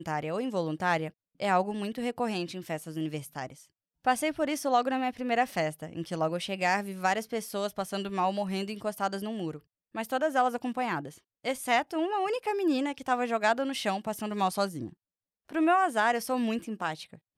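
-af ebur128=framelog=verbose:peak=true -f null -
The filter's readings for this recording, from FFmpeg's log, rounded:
Integrated loudness:
  I:         -30.1 LUFS
  Threshold: -40.5 LUFS
Loudness range:
  LRA:         3.0 LU
  Threshold: -50.6 LUFS
  LRA low:   -32.2 LUFS
  LRA high:  -29.2 LUFS
True peak:
  Peak:      -13.7 dBFS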